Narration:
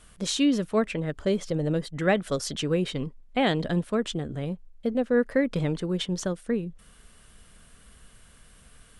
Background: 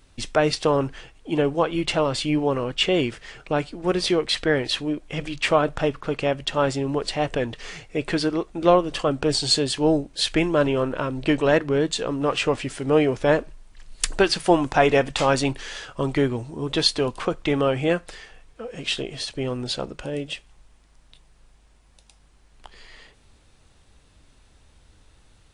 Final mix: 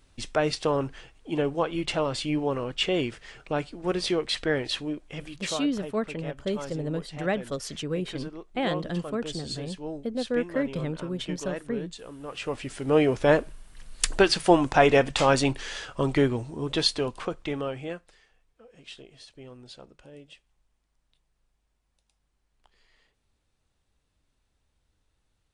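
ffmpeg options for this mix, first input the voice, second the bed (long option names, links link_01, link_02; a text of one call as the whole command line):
ffmpeg -i stem1.wav -i stem2.wav -filter_complex "[0:a]adelay=5200,volume=-4.5dB[link_01];[1:a]volume=10.5dB,afade=type=out:start_time=4.79:duration=0.85:silence=0.266073,afade=type=in:start_time=12.27:duration=0.86:silence=0.16788,afade=type=out:start_time=16.24:duration=1.87:silence=0.133352[link_02];[link_01][link_02]amix=inputs=2:normalize=0" out.wav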